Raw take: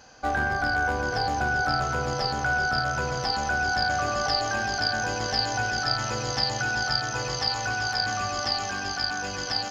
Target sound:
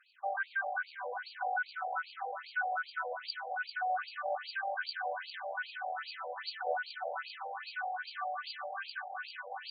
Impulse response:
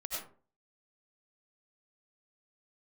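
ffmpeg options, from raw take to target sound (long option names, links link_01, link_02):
-filter_complex "[0:a]asettb=1/sr,asplit=3[link_01][link_02][link_03];[link_01]atrim=end=6.534[link_04];[link_02]atrim=start=6.53:end=7.04,asetpts=PTS-STARTPTS,afade=type=in:duration=0.004:curve=qsin,afade=type=out:start_time=0.506:duration=0.004:curve=qsin,lowshelf=frequency=700:width_type=q:width=1.5:gain=13.5[link_05];[link_03]atrim=start=7.036[link_06];[link_04][link_05]acrossfade=duration=0.004:curve1=hsin:curve2=qsin[link_07];[link_07][link_06]acrossfade=duration=0.004:curve1=qsin:curve2=hsin,asplit=2[link_08][link_09];[1:a]atrim=start_sample=2205,adelay=54[link_10];[link_09][link_10]afir=irnorm=-1:irlink=0,volume=-5.5dB[link_11];[link_08][link_11]amix=inputs=2:normalize=0,afftfilt=real='re*between(b*sr/1024,610*pow(3400/610,0.5+0.5*sin(2*PI*2.5*pts/sr))/1.41,610*pow(3400/610,0.5+0.5*sin(2*PI*2.5*pts/sr))*1.41)':imag='im*between(b*sr/1024,610*pow(3400/610,0.5+0.5*sin(2*PI*2.5*pts/sr))/1.41,610*pow(3400/610,0.5+0.5*sin(2*PI*2.5*pts/sr))*1.41)':win_size=1024:overlap=0.75,volume=-6.5dB"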